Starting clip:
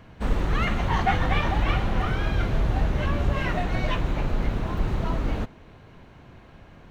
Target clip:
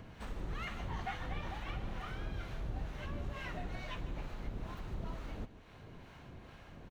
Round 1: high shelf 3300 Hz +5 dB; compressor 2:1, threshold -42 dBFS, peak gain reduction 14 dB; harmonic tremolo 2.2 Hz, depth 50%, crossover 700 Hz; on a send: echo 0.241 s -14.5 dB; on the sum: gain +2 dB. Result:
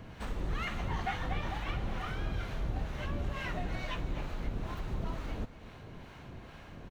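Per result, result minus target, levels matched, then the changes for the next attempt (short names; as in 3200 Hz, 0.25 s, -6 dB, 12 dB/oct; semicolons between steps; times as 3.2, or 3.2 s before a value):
echo 91 ms late; compressor: peak gain reduction -5.5 dB
change: echo 0.15 s -14.5 dB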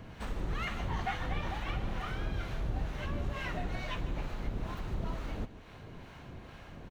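compressor: peak gain reduction -5.5 dB
change: compressor 2:1, threshold -53 dBFS, peak gain reduction 19.5 dB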